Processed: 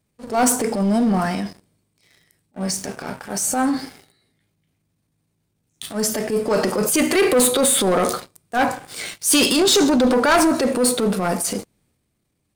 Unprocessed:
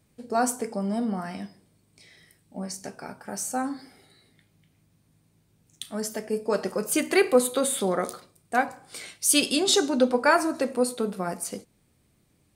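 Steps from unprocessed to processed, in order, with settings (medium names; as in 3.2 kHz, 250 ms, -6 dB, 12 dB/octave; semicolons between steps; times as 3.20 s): transient shaper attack -10 dB, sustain +5 dB; waveshaping leveller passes 3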